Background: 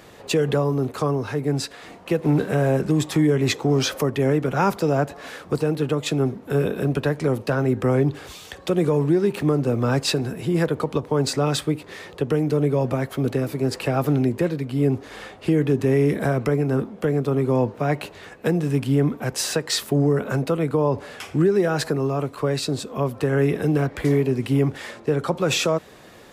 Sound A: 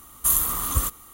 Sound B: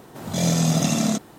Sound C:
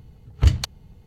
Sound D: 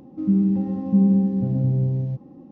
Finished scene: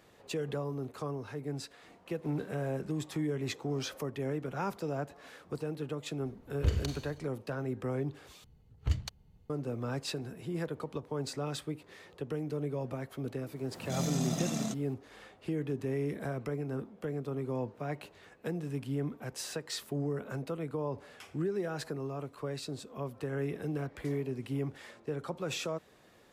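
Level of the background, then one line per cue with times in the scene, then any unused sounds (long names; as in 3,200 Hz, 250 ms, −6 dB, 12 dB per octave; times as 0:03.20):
background −15 dB
0:06.21: mix in C −13.5 dB + four-comb reverb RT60 0.84 s, combs from 31 ms, DRR 3 dB
0:08.44: overwrite with C −14 dB
0:13.56: mix in B −13 dB
not used: A, D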